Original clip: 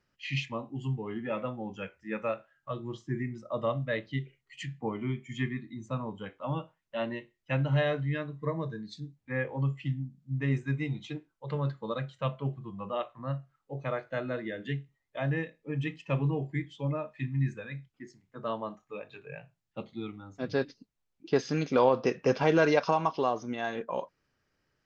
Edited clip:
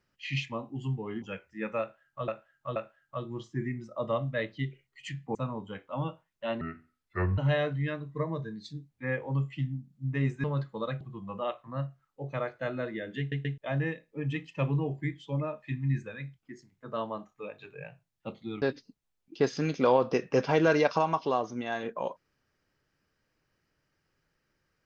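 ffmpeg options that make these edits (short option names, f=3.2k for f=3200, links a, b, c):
-filter_complex "[0:a]asplit=13[a][b][c][d][e][f][g][h][i][j][k][l][m];[a]atrim=end=1.222[n];[b]atrim=start=1.718:end=2.782[o];[c]atrim=start=2.298:end=2.782[p];[d]atrim=start=2.298:end=4.892[q];[e]atrim=start=5.858:end=7.124[r];[f]atrim=start=7.12:end=7.65,asetpts=PTS-STARTPTS,asetrate=30429,aresample=44100[s];[g]atrim=start=7.646:end=10.712[t];[h]atrim=start=11.518:end=12.092[u];[i]atrim=start=12.518:end=14.832[v];[j]atrim=start=14.698:end=14.832[w];[k]atrim=start=14.698:end=14.832[x];[l]atrim=start=15.088:end=20.132[y];[m]atrim=start=20.538[z];[n][o]acrossfade=d=0.004:c1=hsin:c2=hsin[aa];[aa][p]acrossfade=d=0.004:c1=hsin:c2=hsin[ab];[ab][q]acrossfade=d=0.004:c1=hsin:c2=hsin[ac];[ac][r]acrossfade=d=0.004:c1=hsin:c2=hsin[ad];[ad][s]acrossfade=d=0.004:c1=hsin:c2=hsin[ae];[ae][t]acrossfade=d=0.004:c1=hsin:c2=hsin[af];[af][u]acrossfade=d=0.004:c1=hsin:c2=hsin[ag];[ag][v]acrossfade=d=0.004:c1=hsin:c2=hsin[ah];[ah][w]acrossfade=d=0.004:c1=hsin:c2=hsin[ai];[ai][x]acrossfade=d=0.004:c1=hsin:c2=hsin[aj];[aj][y]acrossfade=d=0.004:c1=hsin:c2=hsin[ak];[ak][z]acrossfade=d=0.004:c1=hsin:c2=hsin"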